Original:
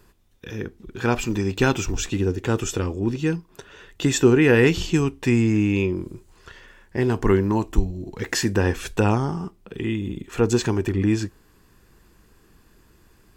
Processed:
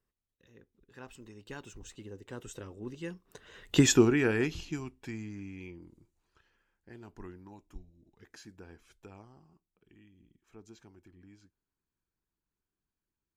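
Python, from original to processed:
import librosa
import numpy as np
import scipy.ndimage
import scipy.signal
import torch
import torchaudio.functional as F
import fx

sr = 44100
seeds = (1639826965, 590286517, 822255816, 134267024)

y = fx.doppler_pass(x, sr, speed_mps=23, closest_m=4.0, pass_at_s=3.8)
y = fx.hpss(y, sr, part='harmonic', gain_db=-5)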